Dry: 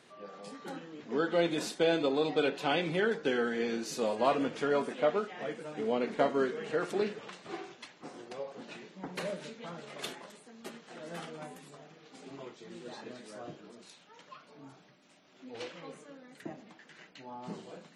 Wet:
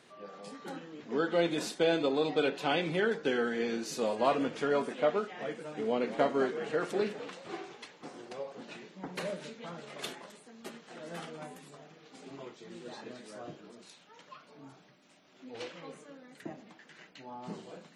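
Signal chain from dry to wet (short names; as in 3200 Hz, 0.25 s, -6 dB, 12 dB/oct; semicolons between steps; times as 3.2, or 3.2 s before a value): 5.77–8.48 frequency-shifting echo 0.205 s, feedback 31%, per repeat +66 Hz, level -13.5 dB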